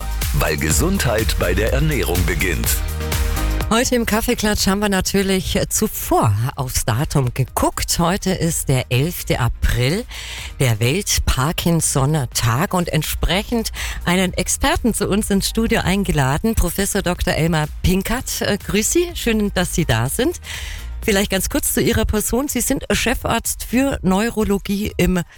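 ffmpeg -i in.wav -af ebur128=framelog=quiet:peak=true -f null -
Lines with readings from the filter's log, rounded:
Integrated loudness:
  I:         -18.5 LUFS
  Threshold: -28.6 LUFS
Loudness range:
  LRA:         1.1 LU
  Threshold: -38.6 LUFS
  LRA low:   -19.1 LUFS
  LRA high:  -18.0 LUFS
True peak:
  Peak:       -5.7 dBFS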